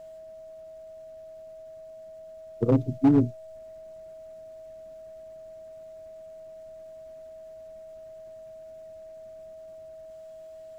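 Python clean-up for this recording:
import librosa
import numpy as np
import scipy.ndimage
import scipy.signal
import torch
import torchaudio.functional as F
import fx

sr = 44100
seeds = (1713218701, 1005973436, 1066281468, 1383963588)

y = fx.fix_declip(x, sr, threshold_db=-14.0)
y = fx.notch(y, sr, hz=640.0, q=30.0)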